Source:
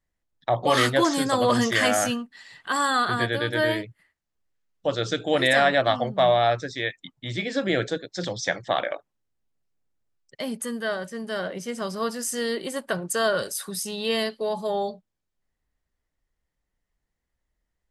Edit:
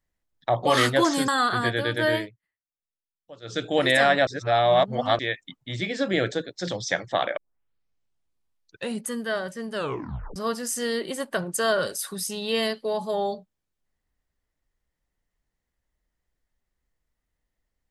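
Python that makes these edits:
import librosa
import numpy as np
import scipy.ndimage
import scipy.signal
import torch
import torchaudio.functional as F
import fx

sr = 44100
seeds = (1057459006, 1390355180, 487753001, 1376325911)

y = fx.edit(x, sr, fx.cut(start_s=1.28, length_s=1.56),
    fx.fade_down_up(start_s=3.71, length_s=1.48, db=-20.0, fade_s=0.21),
    fx.reverse_span(start_s=5.83, length_s=0.92),
    fx.tape_start(start_s=8.93, length_s=1.69),
    fx.tape_stop(start_s=11.3, length_s=0.62), tone=tone)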